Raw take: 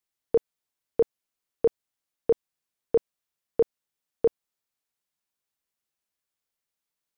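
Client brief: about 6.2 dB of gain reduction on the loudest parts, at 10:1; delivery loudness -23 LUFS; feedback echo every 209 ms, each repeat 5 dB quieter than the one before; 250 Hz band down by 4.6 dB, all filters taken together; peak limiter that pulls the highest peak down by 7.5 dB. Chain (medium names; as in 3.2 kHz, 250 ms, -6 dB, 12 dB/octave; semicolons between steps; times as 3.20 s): peaking EQ 250 Hz -7 dB; compression 10:1, threshold -24 dBFS; peak limiter -23 dBFS; feedback delay 209 ms, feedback 56%, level -5 dB; trim +18 dB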